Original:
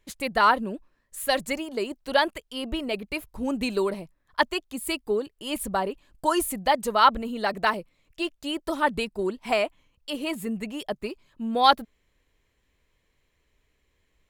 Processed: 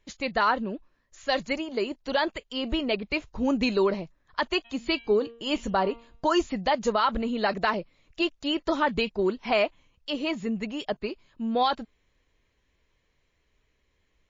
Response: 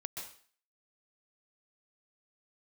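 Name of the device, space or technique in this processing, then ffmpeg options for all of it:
low-bitrate web radio: -filter_complex "[0:a]asplit=3[a][b][c];[a]afade=t=out:st=4.64:d=0.02[d];[b]bandreject=f=232.3:t=h:w=4,bandreject=f=464.6:t=h:w=4,bandreject=f=696.9:t=h:w=4,bandreject=f=929.2:t=h:w=4,bandreject=f=1.1615k:t=h:w=4,bandreject=f=1.3938k:t=h:w=4,bandreject=f=1.6261k:t=h:w=4,bandreject=f=1.8584k:t=h:w=4,bandreject=f=2.0907k:t=h:w=4,bandreject=f=2.323k:t=h:w=4,bandreject=f=2.5553k:t=h:w=4,bandreject=f=2.7876k:t=h:w=4,bandreject=f=3.0199k:t=h:w=4,bandreject=f=3.2522k:t=h:w=4,bandreject=f=3.4845k:t=h:w=4,bandreject=f=3.7168k:t=h:w=4,bandreject=f=3.9491k:t=h:w=4,afade=t=in:st=4.64:d=0.02,afade=t=out:st=6.3:d=0.02[e];[c]afade=t=in:st=6.3:d=0.02[f];[d][e][f]amix=inputs=3:normalize=0,dynaudnorm=f=220:g=21:m=6.5dB,alimiter=limit=-13.5dB:level=0:latency=1:release=60" -ar 16000 -c:a libmp3lame -b:a 32k

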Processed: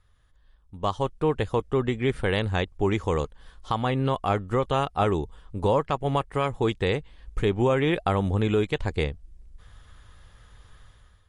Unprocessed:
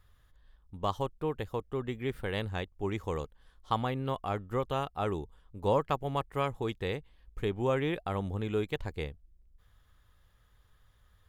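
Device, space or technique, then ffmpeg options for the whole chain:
low-bitrate web radio: -af "dynaudnorm=f=720:g=3:m=15dB,alimiter=limit=-12dB:level=0:latency=1:release=374" -ar 32000 -c:a libmp3lame -b:a 48k

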